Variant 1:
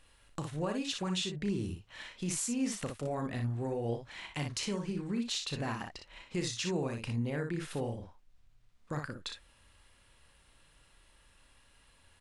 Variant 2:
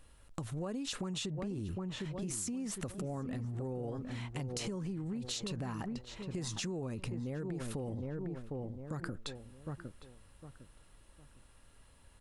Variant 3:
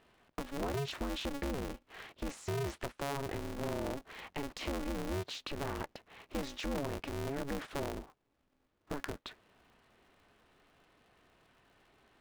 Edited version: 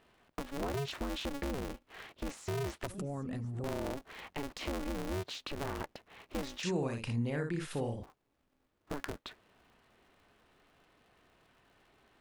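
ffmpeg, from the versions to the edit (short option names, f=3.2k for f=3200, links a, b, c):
-filter_complex "[2:a]asplit=3[a][b][c];[a]atrim=end=2.872[d];[1:a]atrim=start=2.868:end=3.642[e];[b]atrim=start=3.638:end=6.632[f];[0:a]atrim=start=6.628:end=8.032[g];[c]atrim=start=8.028[h];[d][e]acrossfade=d=0.004:c1=hsin:c2=hsin[i];[i][f]acrossfade=d=0.004:c1=hsin:c2=hsin[j];[j][g]acrossfade=d=0.004:c1=hsin:c2=hsin[k];[k][h]acrossfade=d=0.004:c1=hsin:c2=hsin"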